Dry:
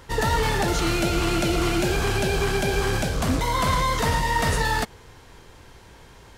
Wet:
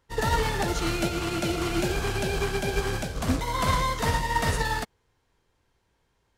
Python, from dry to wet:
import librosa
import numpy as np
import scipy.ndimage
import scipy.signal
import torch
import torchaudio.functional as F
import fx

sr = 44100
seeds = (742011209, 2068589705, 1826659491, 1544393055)

y = fx.highpass(x, sr, hz=57.0, slope=12, at=(1.09, 1.69))
y = fx.upward_expand(y, sr, threshold_db=-35.0, expansion=2.5)